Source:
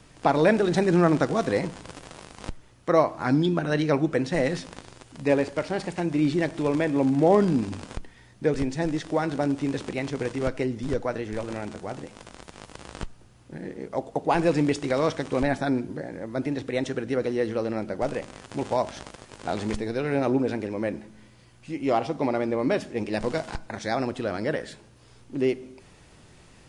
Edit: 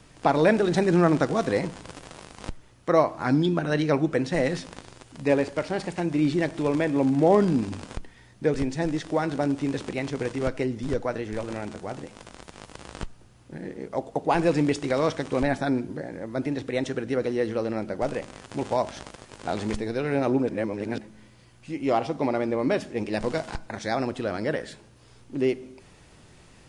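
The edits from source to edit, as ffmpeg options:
ffmpeg -i in.wav -filter_complex "[0:a]asplit=3[link_01][link_02][link_03];[link_01]atrim=end=20.492[link_04];[link_02]atrim=start=20.488:end=20.982,asetpts=PTS-STARTPTS,areverse[link_05];[link_03]atrim=start=20.978[link_06];[link_04][link_05]acrossfade=duration=0.004:curve1=hsin:curve2=hsin[link_07];[link_07][link_06]acrossfade=duration=0.004:curve1=hsin:curve2=hsin" out.wav

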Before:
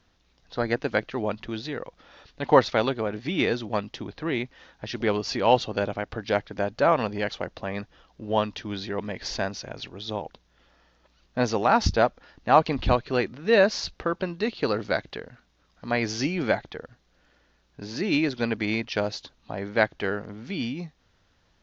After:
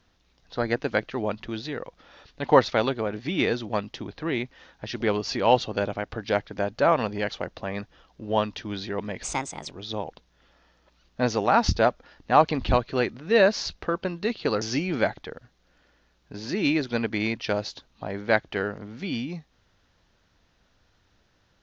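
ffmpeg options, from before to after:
ffmpeg -i in.wav -filter_complex "[0:a]asplit=4[link_01][link_02][link_03][link_04];[link_01]atrim=end=9.234[link_05];[link_02]atrim=start=9.23:end=9.88,asetpts=PTS-STARTPTS,asetrate=60417,aresample=44100,atrim=end_sample=20923,asetpts=PTS-STARTPTS[link_06];[link_03]atrim=start=9.876:end=14.792[link_07];[link_04]atrim=start=16.088[link_08];[link_05][link_06]acrossfade=duration=0.004:curve1=hsin:curve2=hsin[link_09];[link_09][link_07]acrossfade=duration=0.004:curve1=hsin:curve2=hsin[link_10];[link_10][link_08]acrossfade=duration=0.004:curve1=hsin:curve2=hsin" out.wav

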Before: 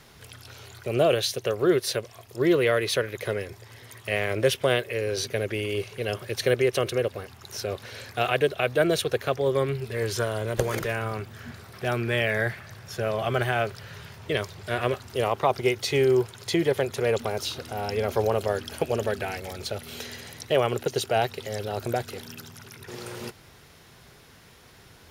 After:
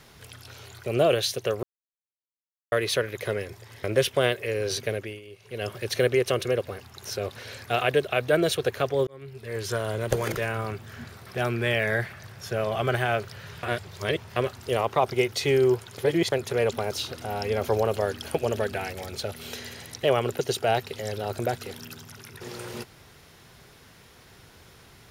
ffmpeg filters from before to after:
ffmpeg -i in.wav -filter_complex "[0:a]asplit=11[link_01][link_02][link_03][link_04][link_05][link_06][link_07][link_08][link_09][link_10][link_11];[link_01]atrim=end=1.63,asetpts=PTS-STARTPTS,afade=type=out:start_time=1.626:duration=0.004:curve=hsin[link_12];[link_02]atrim=start=1.63:end=2.72,asetpts=PTS-STARTPTS,volume=0[link_13];[link_03]atrim=start=2.72:end=3.842,asetpts=PTS-STARTPTS,afade=type=in:duration=0.004:curve=hsin[link_14];[link_04]atrim=start=4.308:end=5.69,asetpts=PTS-STARTPTS,afade=type=out:start_time=1.022:duration=0.36:silence=0.141254[link_15];[link_05]atrim=start=5.69:end=5.84,asetpts=PTS-STARTPTS,volume=-17dB[link_16];[link_06]atrim=start=5.84:end=9.54,asetpts=PTS-STARTPTS,afade=type=in:duration=0.36:silence=0.141254,afade=type=out:start_time=3.696:duration=0.004:curve=hsin[link_17];[link_07]atrim=start=9.54:end=14.102,asetpts=PTS-STARTPTS,afade=type=in:duration=0.81[link_18];[link_08]atrim=start=14.098:end=14.832,asetpts=PTS-STARTPTS,areverse[link_19];[link_09]atrim=start=14.828:end=16.452[link_20];[link_10]atrim=start=16.448:end=16.792,asetpts=PTS-STARTPTS,areverse[link_21];[link_11]atrim=start=16.788[link_22];[link_12][link_13][link_14]concat=n=3:v=0:a=1[link_23];[link_15][link_16][link_17][link_18]concat=n=4:v=0:a=1[link_24];[link_23][link_24]acrossfade=duration=0.004:curve1=hsin:curve2=hsin[link_25];[link_25][link_19]acrossfade=duration=0.004:curve1=hsin:curve2=hsin[link_26];[link_26][link_20]acrossfade=duration=0.004:curve1=hsin:curve2=hsin[link_27];[link_27][link_21]acrossfade=duration=0.004:curve1=hsin:curve2=hsin[link_28];[link_28][link_22]acrossfade=duration=0.004:curve1=hsin:curve2=hsin" out.wav

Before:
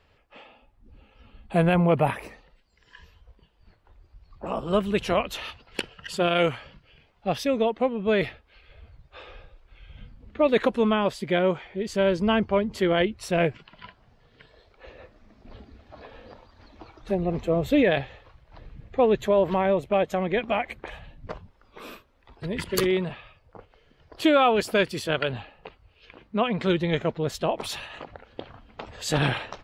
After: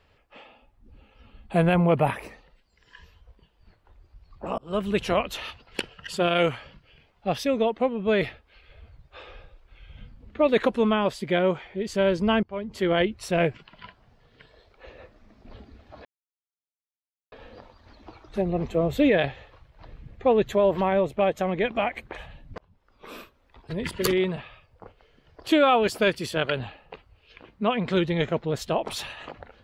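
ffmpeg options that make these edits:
ffmpeg -i in.wav -filter_complex "[0:a]asplit=5[link_01][link_02][link_03][link_04][link_05];[link_01]atrim=end=4.58,asetpts=PTS-STARTPTS,afade=type=out:start_time=4.576:duration=0.004:curve=hsin[link_06];[link_02]atrim=start=4.58:end=12.43,asetpts=PTS-STARTPTS,afade=type=in:duration=0.3,afade=type=out:start_time=7.846:duration=0.004:curve=hsin:silence=0.0668344[link_07];[link_03]atrim=start=12.43:end=16.05,asetpts=PTS-STARTPTS,afade=type=in:duration=0.5:silence=0.0668344,afade=type=out:start_time=3.616:duration=0.004:curve=hsin,apad=pad_dur=1.27[link_08];[link_04]atrim=start=16.05:end=21.31,asetpts=PTS-STARTPTS,afade=type=in:duration=0.004:curve=hsin,afade=type=out:start_time=5.256:duration=0.004:curve=hsin[link_09];[link_05]atrim=start=21.31,asetpts=PTS-STARTPTS,afade=type=in:duration=0.53[link_10];[link_06][link_07][link_08][link_09][link_10]concat=n=5:v=0:a=1" out.wav

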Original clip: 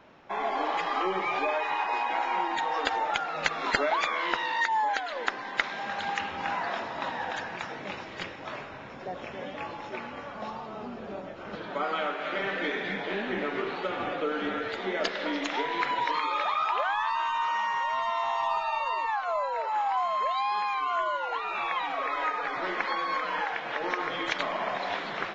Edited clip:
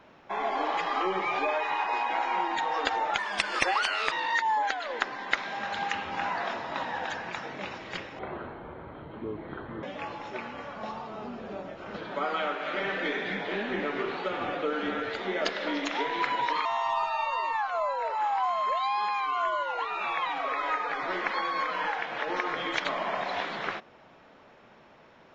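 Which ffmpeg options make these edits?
ffmpeg -i in.wav -filter_complex "[0:a]asplit=6[link_01][link_02][link_03][link_04][link_05][link_06];[link_01]atrim=end=3.184[link_07];[link_02]atrim=start=3.18:end=4.38,asetpts=PTS-STARTPTS,asetrate=56448,aresample=44100[link_08];[link_03]atrim=start=4.376:end=8.454[link_09];[link_04]atrim=start=8.45:end=9.42,asetpts=PTS-STARTPTS,asetrate=26019,aresample=44100,atrim=end_sample=72503,asetpts=PTS-STARTPTS[link_10];[link_05]atrim=start=9.416:end=16.242[link_11];[link_06]atrim=start=18.188[link_12];[link_07][link_08]acrossfade=duration=0.004:curve1=hsin:curve2=hsin[link_13];[link_13][link_09]acrossfade=duration=0.004:curve1=hsin:curve2=hsin[link_14];[link_14][link_10]acrossfade=duration=0.004:curve1=hsin:curve2=hsin[link_15];[link_15][link_11]acrossfade=duration=0.004:curve1=hsin:curve2=hsin[link_16];[link_16][link_12]acrossfade=duration=0.004:curve1=hsin:curve2=hsin" out.wav

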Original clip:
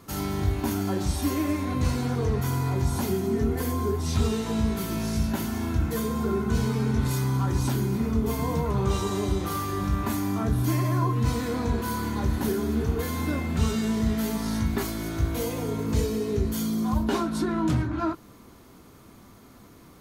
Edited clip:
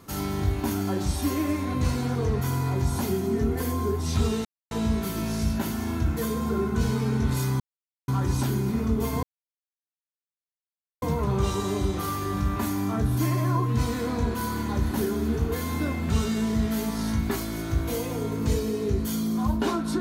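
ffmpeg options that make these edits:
ffmpeg -i in.wav -filter_complex "[0:a]asplit=4[link_01][link_02][link_03][link_04];[link_01]atrim=end=4.45,asetpts=PTS-STARTPTS,afade=type=out:start_time=4.446:duration=0.004:curve=hsin,apad=pad_dur=0.26[link_05];[link_02]atrim=start=4.45:end=7.34,asetpts=PTS-STARTPTS,afade=type=in:duration=0.004:curve=hsin,afade=type=out:start_time=2.886:duration=0.004:curve=hsin,apad=pad_dur=0.48[link_06];[link_03]atrim=start=7.34:end=8.49,asetpts=PTS-STARTPTS,afade=type=in:duration=0.004:curve=hsin,afade=type=out:start_time=1.146:duration=0.004:curve=hsin,apad=pad_dur=1.79[link_07];[link_04]atrim=start=8.49,asetpts=PTS-STARTPTS,afade=type=in:duration=0.004:curve=hsin[link_08];[link_05][link_06][link_07][link_08]concat=n=4:v=0:a=1" out.wav

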